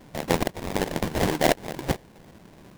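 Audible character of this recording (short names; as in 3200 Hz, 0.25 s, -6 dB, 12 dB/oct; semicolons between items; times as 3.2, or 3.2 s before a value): phasing stages 12, 0.87 Hz, lowest notch 400–2000 Hz; aliases and images of a low sample rate 1300 Hz, jitter 20%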